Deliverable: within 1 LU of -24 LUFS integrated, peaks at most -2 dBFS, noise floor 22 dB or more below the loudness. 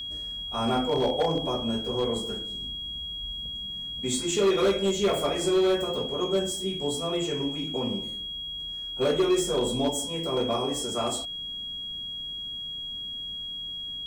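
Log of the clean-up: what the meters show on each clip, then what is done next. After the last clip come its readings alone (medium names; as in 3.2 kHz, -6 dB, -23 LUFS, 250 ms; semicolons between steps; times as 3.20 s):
clipped samples 1.0%; clipping level -18.0 dBFS; steady tone 3.3 kHz; tone level -33 dBFS; loudness -28.0 LUFS; peak level -18.0 dBFS; loudness target -24.0 LUFS
-> clip repair -18 dBFS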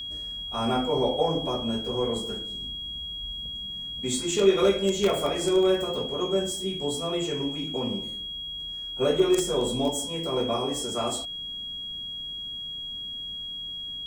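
clipped samples 0.0%; steady tone 3.3 kHz; tone level -33 dBFS
-> band-stop 3.3 kHz, Q 30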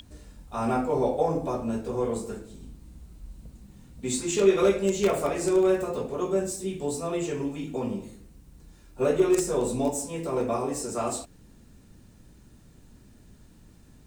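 steady tone not found; loudness -27.0 LUFS; peak level -9.0 dBFS; loudness target -24.0 LUFS
-> trim +3 dB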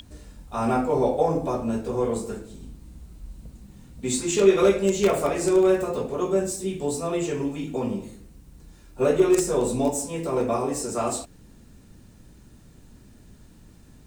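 loudness -24.0 LUFS; peak level -6.0 dBFS; noise floor -51 dBFS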